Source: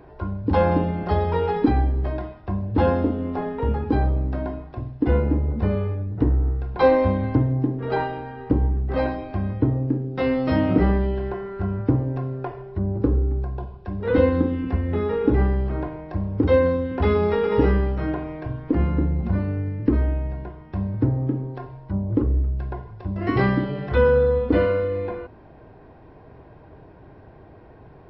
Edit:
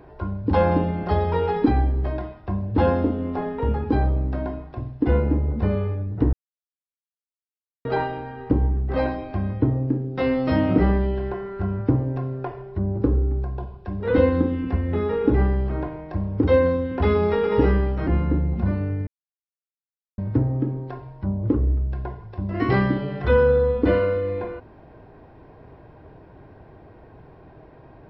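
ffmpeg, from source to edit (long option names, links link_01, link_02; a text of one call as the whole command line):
ffmpeg -i in.wav -filter_complex "[0:a]asplit=6[link_01][link_02][link_03][link_04][link_05][link_06];[link_01]atrim=end=6.33,asetpts=PTS-STARTPTS,afade=type=out:start_time=6.326:duration=0.004:curve=hsin[link_07];[link_02]atrim=start=6.33:end=7.85,asetpts=PTS-STARTPTS,volume=0[link_08];[link_03]atrim=start=7.85:end=18.072,asetpts=PTS-STARTPTS,afade=type=in:duration=0.004:curve=hsin[link_09];[link_04]atrim=start=18.738:end=19.74,asetpts=PTS-STARTPTS,afade=type=out:start_time=0.998:duration=0.004:curve=hsin[link_10];[link_05]atrim=start=19.74:end=20.85,asetpts=PTS-STARTPTS,volume=0[link_11];[link_06]atrim=start=20.85,asetpts=PTS-STARTPTS,afade=type=in:duration=0.004:curve=hsin[link_12];[link_07][link_08][link_09]concat=n=3:v=0:a=1[link_13];[link_10][link_11][link_12]concat=n=3:v=0:a=1[link_14];[link_13][link_14]acrossfade=duration=0.004:curve1=hsin:curve2=hsin" out.wav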